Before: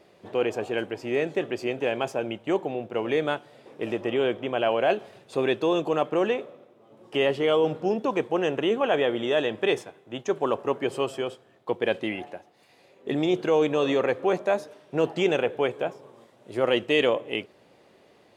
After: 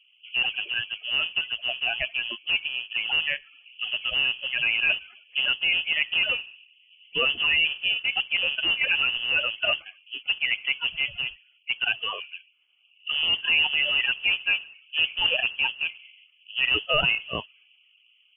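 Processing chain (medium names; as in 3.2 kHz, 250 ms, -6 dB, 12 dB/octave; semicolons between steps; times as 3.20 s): coarse spectral quantiser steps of 30 dB; level-controlled noise filter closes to 430 Hz, open at -21.5 dBFS; frequency inversion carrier 3.2 kHz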